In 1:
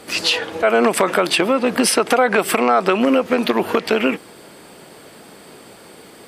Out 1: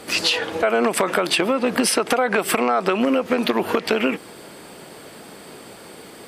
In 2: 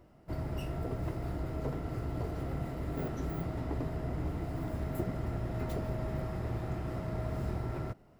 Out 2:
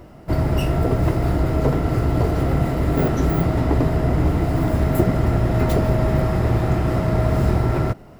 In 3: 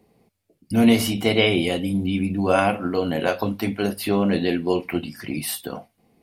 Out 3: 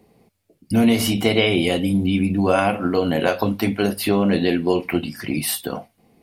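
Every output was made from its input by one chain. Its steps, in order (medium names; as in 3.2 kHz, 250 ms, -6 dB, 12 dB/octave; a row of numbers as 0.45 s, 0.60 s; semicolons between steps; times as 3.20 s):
compression 3:1, threshold -18 dBFS; normalise loudness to -20 LUFS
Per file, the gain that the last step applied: +1.5 dB, +17.0 dB, +4.5 dB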